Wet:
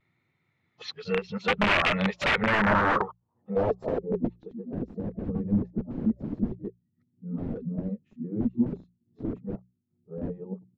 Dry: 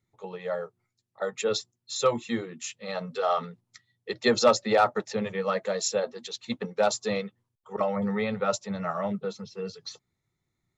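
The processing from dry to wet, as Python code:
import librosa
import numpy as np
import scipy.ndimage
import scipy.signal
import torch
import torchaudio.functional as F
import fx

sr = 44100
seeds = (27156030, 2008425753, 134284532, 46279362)

p1 = np.flip(x).copy()
p2 = scipy.signal.sosfilt(scipy.signal.butter(4, 94.0, 'highpass', fs=sr, output='sos'), p1)
p3 = fx.notch(p2, sr, hz=390.0, q=12.0)
p4 = fx.rider(p3, sr, range_db=3, speed_s=0.5)
p5 = p3 + (p4 * librosa.db_to_amplitude(-1.0))
p6 = (np.mod(10.0 ** (18.5 / 20.0) * p5 + 1.0, 2.0) - 1.0) / 10.0 ** (18.5 / 20.0)
p7 = fx.hum_notches(p6, sr, base_hz=60, count=3)
p8 = fx.vibrato(p7, sr, rate_hz=0.86, depth_cents=38.0)
y = fx.filter_sweep_lowpass(p8, sr, from_hz=2500.0, to_hz=240.0, start_s=2.21, end_s=4.67, q=2.1)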